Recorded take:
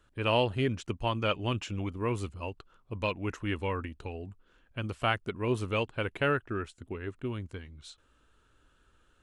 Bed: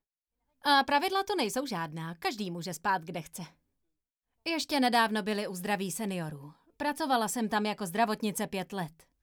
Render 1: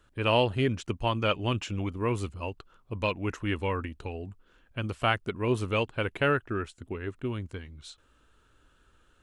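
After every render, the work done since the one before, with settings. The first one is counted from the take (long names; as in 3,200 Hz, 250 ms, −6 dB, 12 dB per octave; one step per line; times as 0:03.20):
level +2.5 dB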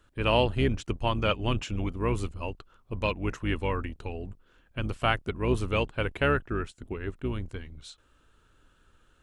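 sub-octave generator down 2 octaves, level −2 dB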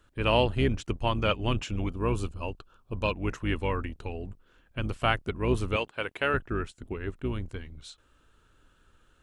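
0:01.91–0:03.14: Butterworth band-reject 2,000 Hz, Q 4.3
0:05.76–0:06.34: high-pass filter 530 Hz 6 dB per octave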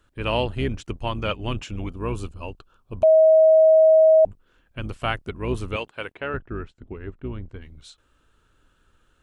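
0:03.03–0:04.25: beep over 636 Hz −10.5 dBFS
0:06.12–0:07.62: head-to-tape spacing loss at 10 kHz 24 dB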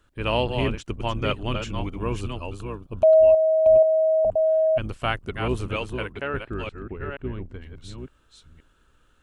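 delay that plays each chunk backwards 478 ms, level −6 dB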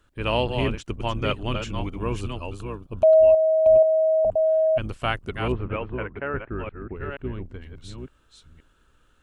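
0:05.52–0:06.96: low-pass filter 2,200 Hz 24 dB per octave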